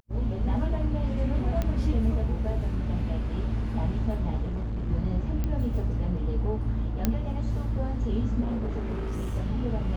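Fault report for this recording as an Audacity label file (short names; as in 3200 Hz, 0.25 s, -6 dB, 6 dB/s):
1.620000	1.620000	pop -16 dBFS
4.420000	4.900000	clipped -27.5 dBFS
5.440000	5.440000	pop -18 dBFS
7.050000	7.050000	pop -10 dBFS
8.400000	9.360000	clipped -26 dBFS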